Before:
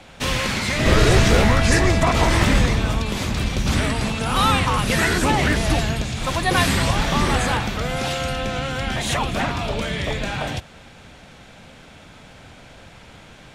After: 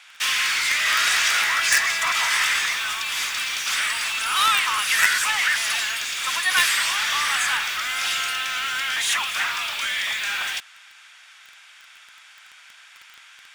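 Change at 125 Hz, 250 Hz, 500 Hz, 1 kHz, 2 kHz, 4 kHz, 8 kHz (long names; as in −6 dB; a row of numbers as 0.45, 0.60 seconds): below −30 dB, below −25 dB, −21.5 dB, −3.5 dB, +3.5 dB, +3.5 dB, +4.5 dB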